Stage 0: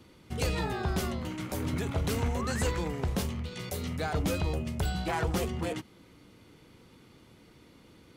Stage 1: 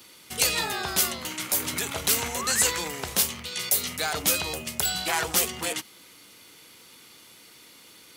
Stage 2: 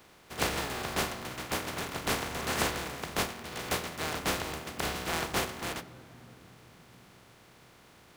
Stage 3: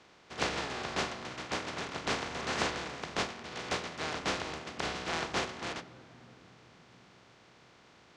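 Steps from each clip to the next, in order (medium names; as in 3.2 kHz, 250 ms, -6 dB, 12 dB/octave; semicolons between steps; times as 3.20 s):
tilt EQ +4.5 dB/octave; trim +4.5 dB
spectral contrast reduction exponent 0.17; low-pass 1.1 kHz 6 dB/octave; on a send at -12.5 dB: reverberation RT60 3.6 s, pre-delay 3 ms; on the sum: trim +3.5 dB
low-pass 6.6 kHz 24 dB/octave; bass shelf 90 Hz -9 dB; trim -1.5 dB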